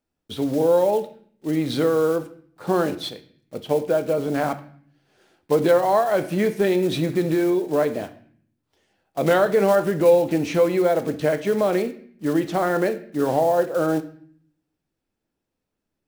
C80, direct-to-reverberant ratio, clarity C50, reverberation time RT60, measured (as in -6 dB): 17.5 dB, 10.0 dB, 14.5 dB, 0.55 s